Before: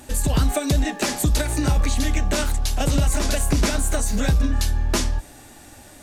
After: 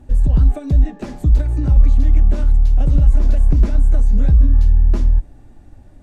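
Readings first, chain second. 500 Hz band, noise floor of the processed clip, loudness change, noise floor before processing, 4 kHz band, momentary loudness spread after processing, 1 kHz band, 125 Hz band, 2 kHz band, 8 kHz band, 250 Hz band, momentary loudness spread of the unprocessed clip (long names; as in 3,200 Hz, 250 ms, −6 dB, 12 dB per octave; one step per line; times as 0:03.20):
−6.0 dB, −43 dBFS, +6.0 dB, −45 dBFS, −19.5 dB, 3 LU, −10.0 dB, +7.0 dB, −14.5 dB, −23.5 dB, −1.5 dB, 3 LU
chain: spectral tilt −4.5 dB per octave
level −10.5 dB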